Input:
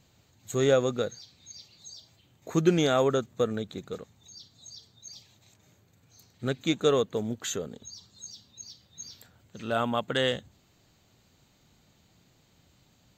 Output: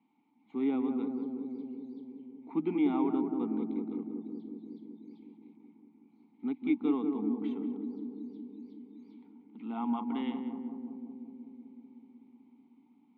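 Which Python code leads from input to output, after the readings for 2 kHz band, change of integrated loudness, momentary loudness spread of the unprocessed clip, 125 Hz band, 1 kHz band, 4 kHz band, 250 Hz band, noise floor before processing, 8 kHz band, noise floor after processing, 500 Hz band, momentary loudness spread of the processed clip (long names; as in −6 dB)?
−15.5 dB, −6.5 dB, 22 LU, −16.5 dB, −7.0 dB, below −20 dB, +2.0 dB, −65 dBFS, below −40 dB, −66 dBFS, −12.5 dB, 20 LU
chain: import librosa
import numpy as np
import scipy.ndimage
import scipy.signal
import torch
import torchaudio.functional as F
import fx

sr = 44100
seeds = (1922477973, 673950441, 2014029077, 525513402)

y = fx.vowel_filter(x, sr, vowel='u')
y = fx.cabinet(y, sr, low_hz=200.0, low_slope=24, high_hz=2900.0, hz=(230.0, 340.0, 550.0, 1800.0, 2600.0), db=(7, -10, -8, -6, -8))
y = fx.echo_filtered(y, sr, ms=187, feedback_pct=82, hz=850.0, wet_db=-4.0)
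y = F.gain(torch.from_numpy(y), 8.0).numpy()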